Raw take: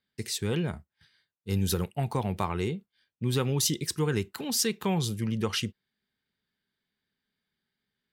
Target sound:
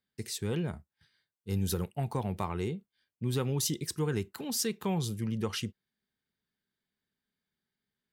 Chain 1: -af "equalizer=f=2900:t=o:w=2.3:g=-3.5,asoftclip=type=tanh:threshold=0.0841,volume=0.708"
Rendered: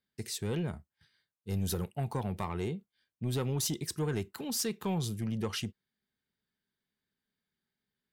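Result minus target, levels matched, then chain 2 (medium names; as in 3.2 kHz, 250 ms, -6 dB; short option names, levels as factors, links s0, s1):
saturation: distortion +15 dB
-af "equalizer=f=2900:t=o:w=2.3:g=-3.5,asoftclip=type=tanh:threshold=0.251,volume=0.708"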